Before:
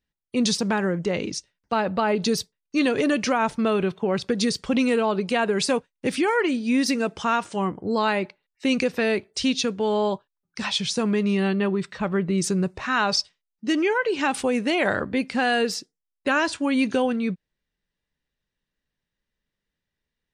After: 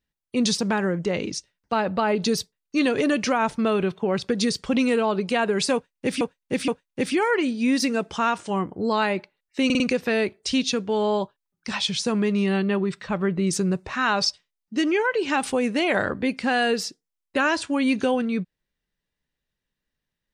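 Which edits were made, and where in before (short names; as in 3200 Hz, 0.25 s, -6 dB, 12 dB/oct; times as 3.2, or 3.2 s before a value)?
5.74–6.21 loop, 3 plays
8.71 stutter 0.05 s, 4 plays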